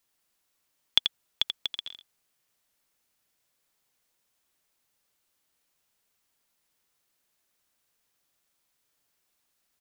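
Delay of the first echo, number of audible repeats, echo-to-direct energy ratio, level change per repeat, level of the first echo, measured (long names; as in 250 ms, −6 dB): 85 ms, 1, −7.0 dB, repeats not evenly spaced, −7.0 dB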